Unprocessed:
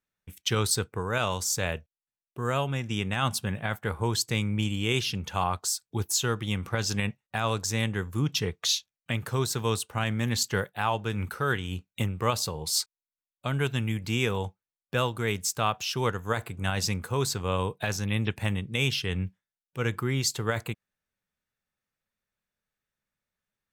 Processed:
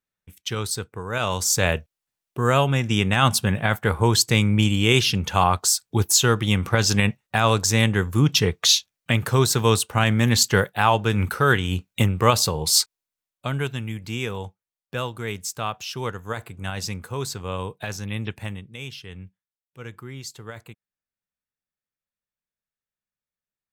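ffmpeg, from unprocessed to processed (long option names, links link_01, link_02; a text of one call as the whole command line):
ffmpeg -i in.wav -af "volume=9dB,afade=type=in:start_time=1.04:duration=0.63:silence=0.298538,afade=type=out:start_time=12.75:duration=1.04:silence=0.298538,afade=type=out:start_time=18.32:duration=0.43:silence=0.398107" out.wav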